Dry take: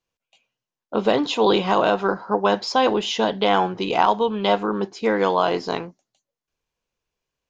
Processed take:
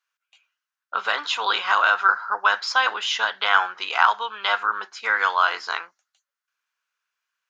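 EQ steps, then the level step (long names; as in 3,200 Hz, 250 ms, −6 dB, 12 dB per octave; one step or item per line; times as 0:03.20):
high-pass with resonance 1,400 Hz, resonance Q 4
0.0 dB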